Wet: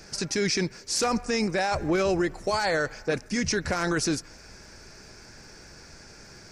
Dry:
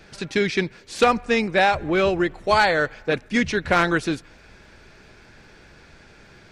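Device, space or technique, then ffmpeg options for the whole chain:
over-bright horn tweeter: -af "highshelf=frequency=4300:width_type=q:width=3:gain=7,alimiter=limit=-17dB:level=0:latency=1:release=19"

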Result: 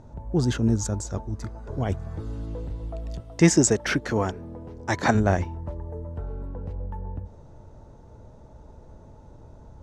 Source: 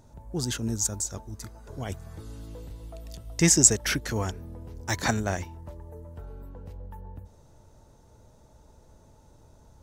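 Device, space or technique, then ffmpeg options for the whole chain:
through cloth: -filter_complex "[0:a]asettb=1/sr,asplit=3[link_01][link_02][link_03];[link_01]atrim=end=3.204[link_04];[link_02]atrim=start=3.2:end=5.15,asetpts=PTS-STARTPTS,afade=type=in:duration=0.004:curve=qsin,afade=type=out:start_time=1.946:duration=0.004:curve=qsin,highpass=frequency=220:poles=1[link_05];[link_03]atrim=start=5.146[link_06];[link_04][link_05]acrossfade=duration=0.004:curve1=hsin:curve2=qsin[link_07];[link_07][link_06]acrossfade=duration=0.004:curve1=qsin:curve2=hsin,lowpass=7800,highshelf=frequency=2200:gain=-14,volume=8.5dB"

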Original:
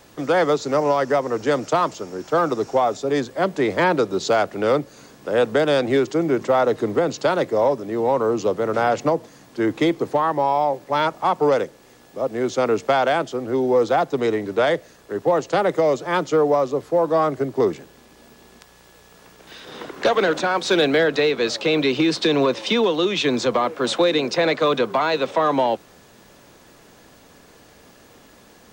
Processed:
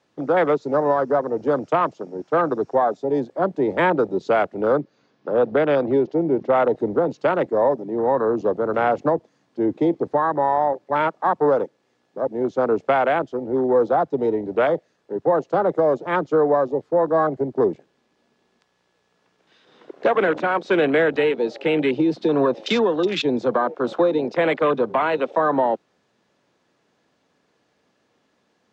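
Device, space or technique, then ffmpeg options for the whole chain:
over-cleaned archive recording: -filter_complex "[0:a]highpass=120,lowpass=5400,afwtdn=0.0562,asettb=1/sr,asplit=3[link_01][link_02][link_03];[link_01]atrim=end=4.814[link_04];[link_02]atrim=start=4.81:end=6.53,asetpts=PTS-STARTPTS,afade=type=in:duration=0.004:curve=qsin,afade=type=out:start_time=1.716:duration=0.004:curve=qsin,lowpass=frequency=5600:width=0.5412,lowpass=frequency=5600:width=1.3066[link_05];[link_03]atrim=start=6.526[link_06];[link_04][link_05]acrossfade=duration=0.004:curve1=hsin:curve2=qsin[link_07];[link_07][link_06]acrossfade=duration=0.004:curve1=qsin:curve2=hsin"

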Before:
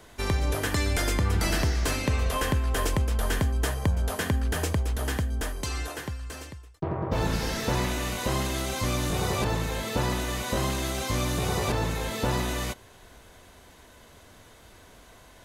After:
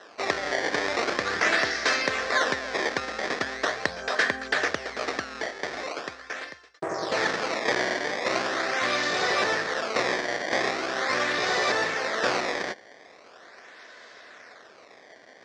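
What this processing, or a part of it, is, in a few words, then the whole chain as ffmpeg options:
circuit-bent sampling toy: -af "acrusher=samples=19:mix=1:aa=0.000001:lfo=1:lforange=30.4:lforate=0.41,highpass=550,equalizer=frequency=920:width_type=q:width=4:gain=-7,equalizer=frequency=1800:width_type=q:width=4:gain=7,equalizer=frequency=2900:width_type=q:width=4:gain=-6,equalizer=frequency=5400:width_type=q:width=4:gain=3,lowpass=frequency=5700:width=0.5412,lowpass=frequency=5700:width=1.3066,volume=7.5dB"

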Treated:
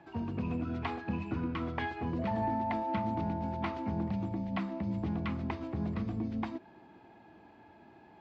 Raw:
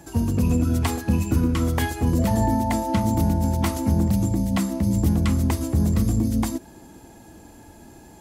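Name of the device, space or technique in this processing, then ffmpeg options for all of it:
overdrive pedal into a guitar cabinet: -filter_complex "[0:a]asplit=2[link_01][link_02];[link_02]highpass=frequency=720:poles=1,volume=11dB,asoftclip=type=tanh:threshold=-8.5dB[link_03];[link_01][link_03]amix=inputs=2:normalize=0,lowpass=frequency=1100:poles=1,volume=-6dB,highpass=100,equalizer=frequency=270:width_type=q:width=4:gain=-4,equalizer=frequency=510:width_type=q:width=4:gain=-6,equalizer=frequency=2400:width_type=q:width=4:gain=4,lowpass=frequency=4100:width=0.5412,lowpass=frequency=4100:width=1.3066,volume=-8.5dB"

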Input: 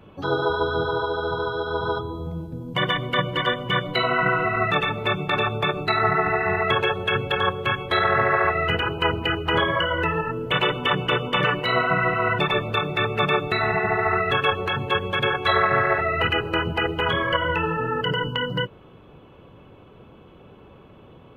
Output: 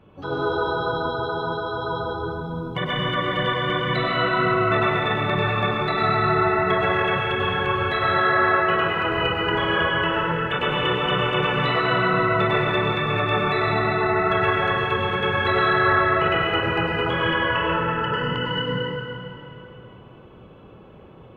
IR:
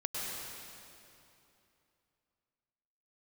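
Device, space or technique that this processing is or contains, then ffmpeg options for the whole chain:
swimming-pool hall: -filter_complex "[1:a]atrim=start_sample=2205[link_01];[0:a][link_01]afir=irnorm=-1:irlink=0,highshelf=frequency=4700:gain=-7.5,asettb=1/sr,asplit=3[link_02][link_03][link_04];[link_02]atrim=end=8.184[link_05];[link_03]atrim=start=8.18:end=9.12,asetpts=PTS-STARTPTS,afade=type=in:duration=0.004:curve=qsin,afade=type=out:start_time=0.936:duration=0.004:curve=qsin,highpass=frequency=160:poles=1[link_06];[link_04]atrim=start=9.116[link_07];[link_05][link_06]acrossfade=duration=0.004:curve1=hsin:curve2=qsin[link_08];[link_08][link_07]acrossfade=duration=0.004:curve1=qsin:curve2=hsin,volume=-2.5dB"

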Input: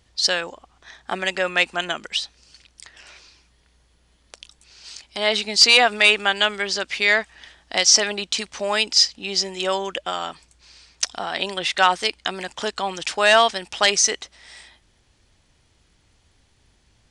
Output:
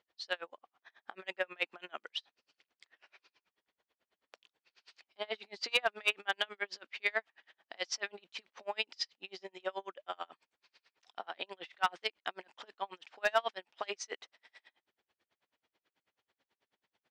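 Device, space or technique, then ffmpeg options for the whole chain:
helicopter radio: -af "highpass=390,lowpass=3000,aeval=exprs='val(0)*pow(10,-35*(0.5-0.5*cos(2*PI*9.2*n/s))/20)':channel_layout=same,asoftclip=type=hard:threshold=-10.5dB,volume=-8dB"

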